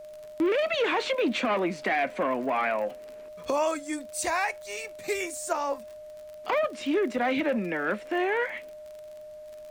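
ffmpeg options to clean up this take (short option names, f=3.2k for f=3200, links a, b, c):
-af "adeclick=t=4,bandreject=f=610:w=30,agate=range=-21dB:threshold=-36dB"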